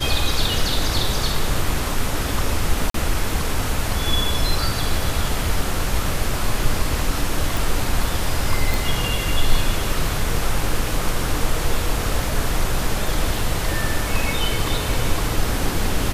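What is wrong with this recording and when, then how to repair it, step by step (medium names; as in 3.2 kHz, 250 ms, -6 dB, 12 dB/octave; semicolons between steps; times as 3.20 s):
2.90–2.94 s: dropout 43 ms
7.57 s: pop
8.74 s: pop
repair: de-click; interpolate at 2.90 s, 43 ms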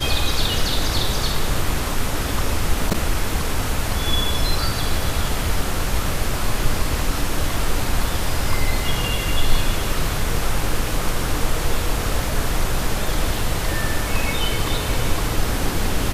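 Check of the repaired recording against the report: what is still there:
nothing left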